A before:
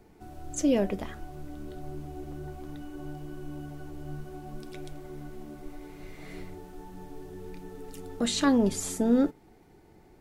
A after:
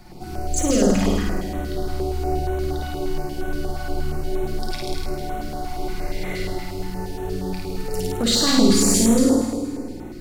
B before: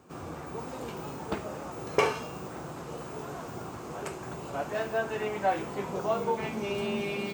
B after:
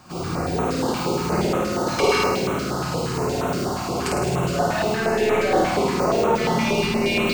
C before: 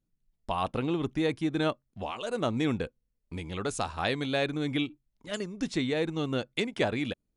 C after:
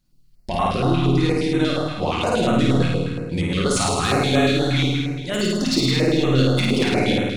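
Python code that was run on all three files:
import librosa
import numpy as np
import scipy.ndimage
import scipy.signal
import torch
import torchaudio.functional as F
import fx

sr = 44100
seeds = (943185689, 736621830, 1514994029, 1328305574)

p1 = fx.peak_eq(x, sr, hz=4600.0, db=9.5, octaves=0.46)
p2 = fx.hum_notches(p1, sr, base_hz=50, count=6)
p3 = fx.over_compress(p2, sr, threshold_db=-33.0, ratio=-1.0)
p4 = p2 + F.gain(torch.from_numpy(p3), -1.0).numpy()
p5 = 10.0 ** (-19.0 / 20.0) * np.tanh(p4 / 10.0 ** (-19.0 / 20.0))
p6 = fx.room_flutter(p5, sr, wall_m=9.1, rt60_s=1.5)
p7 = fx.room_shoebox(p6, sr, seeds[0], volume_m3=1000.0, walls='mixed', distance_m=0.95)
p8 = fx.filter_held_notch(p7, sr, hz=8.5, low_hz=430.0, high_hz=4800.0)
y = F.gain(torch.from_numpy(p8), 4.5).numpy()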